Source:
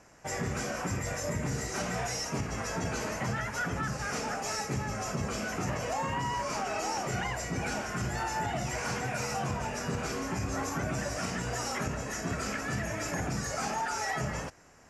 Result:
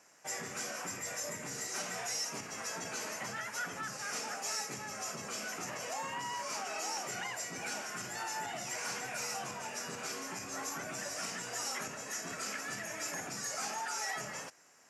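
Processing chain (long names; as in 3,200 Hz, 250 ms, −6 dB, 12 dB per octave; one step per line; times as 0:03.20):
high-pass filter 160 Hz 12 dB per octave
spectral tilt +2.5 dB per octave
level −6.5 dB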